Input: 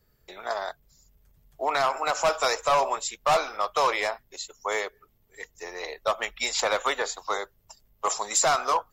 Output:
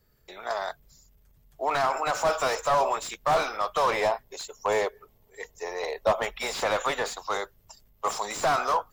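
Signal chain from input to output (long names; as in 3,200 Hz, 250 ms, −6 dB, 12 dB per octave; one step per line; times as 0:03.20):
gain on a spectral selection 0:03.94–0:06.53, 380–1,100 Hz +6 dB
transient designer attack −1 dB, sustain +4 dB
slew-rate limiting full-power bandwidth 110 Hz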